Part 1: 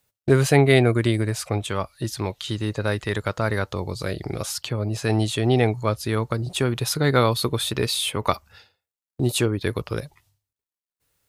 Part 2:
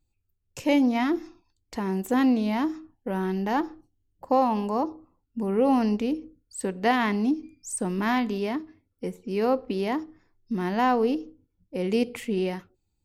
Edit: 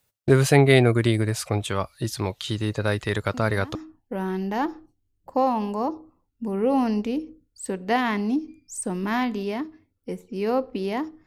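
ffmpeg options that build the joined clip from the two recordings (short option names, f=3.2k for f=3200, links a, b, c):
-filter_complex "[1:a]asplit=2[a][b];[0:a]apad=whole_dur=11.26,atrim=end=11.26,atrim=end=3.752[c];[b]atrim=start=2.698:end=10.21[d];[a]atrim=start=2.29:end=2.7,asetpts=PTS-STARTPTS,volume=-15.5dB,afade=t=in:d=0.004:c=hsin,afade=t=out:st=0.406:d=0.004:c=hsin,adelay=3340[e];[c][d]acrossfade=d=0.004:c1=hsin:c2=hsin[f];[f][e]amix=inputs=2:normalize=0"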